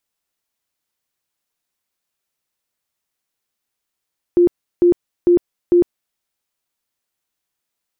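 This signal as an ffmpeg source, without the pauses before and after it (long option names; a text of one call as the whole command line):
ffmpeg -f lavfi -i "aevalsrc='0.398*sin(2*PI*350*mod(t,0.45))*lt(mod(t,0.45),36/350)':duration=1.8:sample_rate=44100" out.wav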